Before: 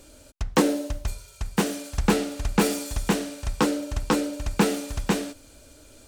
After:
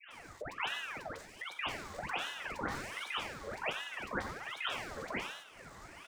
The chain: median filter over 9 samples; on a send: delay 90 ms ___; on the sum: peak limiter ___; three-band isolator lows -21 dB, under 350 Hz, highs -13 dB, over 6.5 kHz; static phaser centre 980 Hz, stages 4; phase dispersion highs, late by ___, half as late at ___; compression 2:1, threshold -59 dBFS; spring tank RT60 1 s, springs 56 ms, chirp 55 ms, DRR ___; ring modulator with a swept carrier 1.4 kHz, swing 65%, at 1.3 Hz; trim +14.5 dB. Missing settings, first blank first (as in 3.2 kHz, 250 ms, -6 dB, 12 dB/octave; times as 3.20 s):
-16 dB, -14.5 dBFS, 109 ms, 820 Hz, 16 dB